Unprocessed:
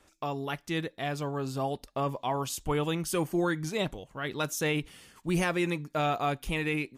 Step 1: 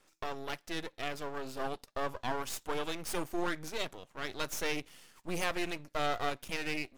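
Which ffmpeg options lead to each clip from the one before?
-af "highpass=f=280:p=1,aeval=exprs='max(val(0),0)':c=same,equalizer=f=5300:t=o:w=0.34:g=2"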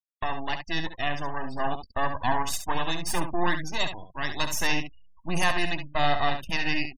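-filter_complex "[0:a]afftfilt=real='re*gte(hypot(re,im),0.00708)':imag='im*gte(hypot(re,im),0.00708)':win_size=1024:overlap=0.75,aecho=1:1:1.1:0.71,asplit=2[s0][s1];[s1]aecho=0:1:19|69:0.133|0.376[s2];[s0][s2]amix=inputs=2:normalize=0,volume=2.24"

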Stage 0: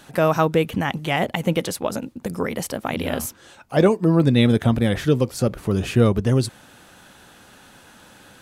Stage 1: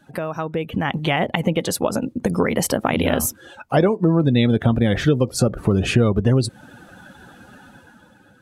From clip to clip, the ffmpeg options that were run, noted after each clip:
-af "acompressor=threshold=0.0562:ratio=4,afftdn=nr=16:nf=-44,dynaudnorm=f=110:g=13:m=3.35"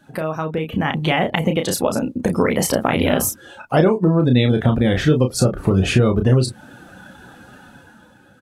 -filter_complex "[0:a]asplit=2[s0][s1];[s1]adelay=32,volume=0.501[s2];[s0][s2]amix=inputs=2:normalize=0,volume=1.12"

